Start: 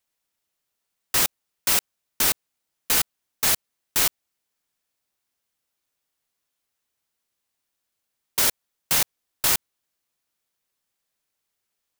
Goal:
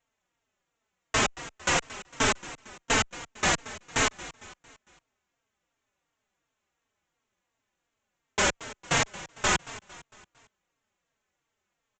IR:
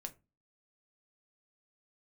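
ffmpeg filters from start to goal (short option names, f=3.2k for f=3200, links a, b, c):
-filter_complex "[0:a]equalizer=f=4.7k:t=o:w=0.93:g=-14.5,aresample=16000,aeval=exprs='0.188*sin(PI/2*2*val(0)/0.188)':c=same,aresample=44100,aecho=1:1:227|454|681|908:0.141|0.0678|0.0325|0.0156,asplit=2[a][b];[b]adelay=3.8,afreqshift=-2.8[c];[a][c]amix=inputs=2:normalize=1"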